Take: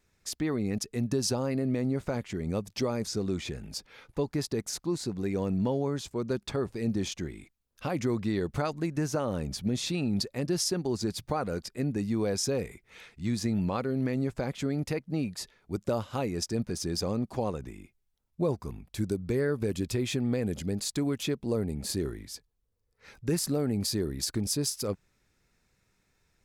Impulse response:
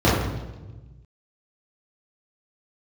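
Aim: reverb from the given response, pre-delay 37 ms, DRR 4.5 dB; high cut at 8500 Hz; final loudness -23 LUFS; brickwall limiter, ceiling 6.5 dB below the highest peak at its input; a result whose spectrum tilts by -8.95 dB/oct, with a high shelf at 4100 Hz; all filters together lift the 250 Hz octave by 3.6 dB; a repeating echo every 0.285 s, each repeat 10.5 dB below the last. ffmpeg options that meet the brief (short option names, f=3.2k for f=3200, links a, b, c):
-filter_complex "[0:a]lowpass=8.5k,equalizer=f=250:t=o:g=4.5,highshelf=f=4.1k:g=-5.5,alimiter=limit=-21dB:level=0:latency=1,aecho=1:1:285|570|855:0.299|0.0896|0.0269,asplit=2[a][b];[1:a]atrim=start_sample=2205,adelay=37[c];[b][c]afir=irnorm=-1:irlink=0,volume=-26.5dB[d];[a][d]amix=inputs=2:normalize=0,volume=3dB"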